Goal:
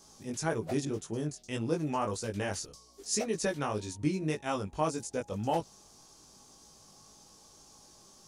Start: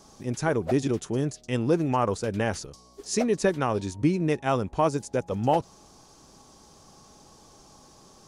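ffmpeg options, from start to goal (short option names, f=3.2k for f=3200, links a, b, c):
-filter_complex "[0:a]highshelf=f=3.5k:g=10,flanger=delay=18:depth=2.5:speed=1.8,asettb=1/sr,asplit=3[a][b][c];[a]atrim=end=0.854[d];[b]atrim=start=0.85:end=1.87,asetpts=PTS-STARTPTS,afade=t=in:d=0.004:c=qsin,afade=t=out:st=1.016:d=0.004:c=qsin,adynamicequalizer=threshold=0.00562:dfrequency=1700:dqfactor=0.7:tfrequency=1700:tqfactor=0.7:attack=5:release=100:ratio=0.375:range=2.5:mode=cutabove:tftype=highshelf[e];[c]atrim=start=1.866[f];[d][e]acrossfade=d=0.004:c1=hsin:c2=qsin[g];[g][f]acrossfade=d=0.004:c1=qsin:c2=hsin,volume=-5dB"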